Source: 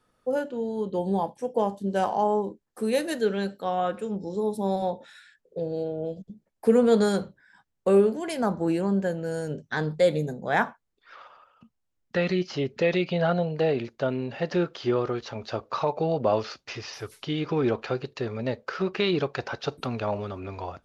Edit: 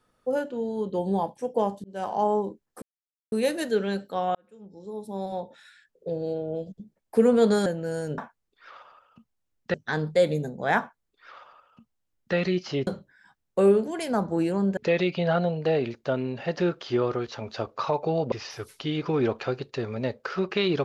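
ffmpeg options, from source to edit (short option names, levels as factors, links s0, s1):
-filter_complex "[0:a]asplit=10[s0][s1][s2][s3][s4][s5][s6][s7][s8][s9];[s0]atrim=end=1.84,asetpts=PTS-STARTPTS,afade=t=out:st=1.836:d=0.004:c=hsin[s10];[s1]atrim=start=1.84:end=2.82,asetpts=PTS-STARTPTS,afade=t=in:d=0.39,afade=t=out:st=0.976:d=0.004:c=hsin,apad=pad_dur=0.5[s11];[s2]atrim=start=2.82:end=3.85,asetpts=PTS-STARTPTS,afade=t=in:d=0.004:c=hsin,afade=t=out:st=1.026:d=0.004:c=hsin[s12];[s3]atrim=start=3.85:end=7.162,asetpts=PTS-STARTPTS,afade=t=in:d=1.75[s13];[s4]atrim=start=9.058:end=9.582[s14];[s5]atrim=start=10.628:end=12.192[s15];[s6]atrim=start=9.578:end=12.712[s16];[s7]atrim=start=7.158:end=9.062[s17];[s8]atrim=start=12.708:end=16.262[s18];[s9]atrim=start=16.748[s19];[s10][s11][s12][s13]concat=n=4:v=0:a=1[s20];[s20][s14]acrossfade=d=0.004:c1=hsin:c2=hsin[s21];[s21][s15]acrossfade=d=0.004:c1=hsin:c2=hsin[s22];[s22][s16]acrossfade=d=0.004:c1=hsin:c2=hsin[s23];[s23][s17]acrossfade=d=0.004:c1=hsin:c2=hsin[s24];[s24][s18]acrossfade=d=0.004:c1=hsin:c2=hsin[s25];[s25][s19]acrossfade=d=0.004:c1=hsin:c2=hsin"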